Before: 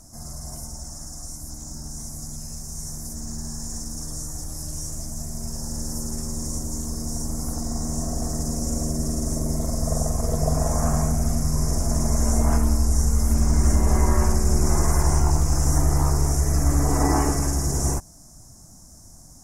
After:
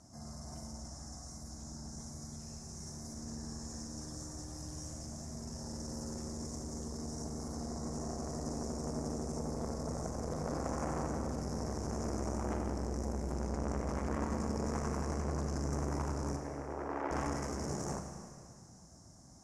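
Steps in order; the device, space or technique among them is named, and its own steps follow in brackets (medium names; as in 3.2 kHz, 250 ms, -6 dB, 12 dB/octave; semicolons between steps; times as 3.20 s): valve radio (band-pass 82–4900 Hz; valve stage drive 18 dB, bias 0.45; transformer saturation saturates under 680 Hz); 16.36–17.11 s: three-band isolator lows -23 dB, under 300 Hz, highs -23 dB, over 3.2 kHz; Schroeder reverb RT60 2.1 s, combs from 28 ms, DRR 4 dB; trim -5 dB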